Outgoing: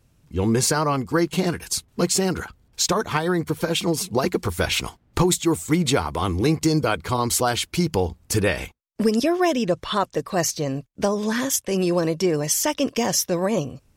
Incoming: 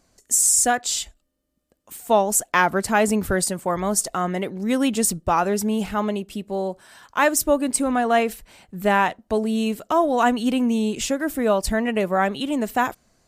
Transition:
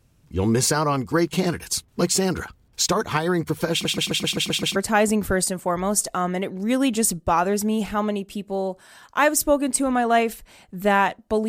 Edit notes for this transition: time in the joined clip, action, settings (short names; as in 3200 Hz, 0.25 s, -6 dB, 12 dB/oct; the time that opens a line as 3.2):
outgoing
3.72 stutter in place 0.13 s, 8 plays
4.76 switch to incoming from 2.76 s